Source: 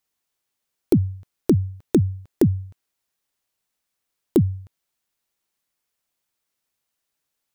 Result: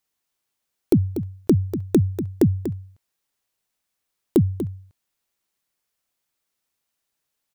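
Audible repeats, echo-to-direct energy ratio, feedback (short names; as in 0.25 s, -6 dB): 1, -10.5 dB, no steady repeat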